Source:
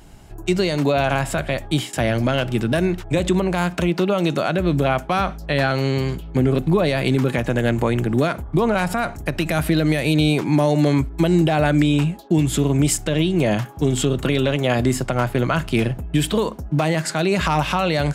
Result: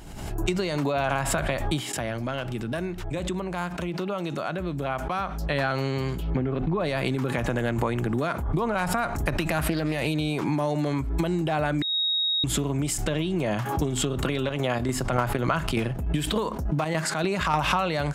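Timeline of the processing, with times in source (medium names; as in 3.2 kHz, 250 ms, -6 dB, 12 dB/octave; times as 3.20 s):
1.85–5.60 s: dip -11.5 dB, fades 0.15 s
6.30–6.81 s: low-pass 2.9 kHz
9.48–10.07 s: loudspeaker Doppler distortion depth 0.22 ms
11.82–12.44 s: bleep 3.77 kHz -17 dBFS
14.30–17.61 s: square tremolo 3.4 Hz, depth 65%, duty 65%
whole clip: compression, threshold -24 dBFS; dynamic bell 1.1 kHz, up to +6 dB, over -43 dBFS, Q 1.3; swell ahead of each attack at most 45 dB/s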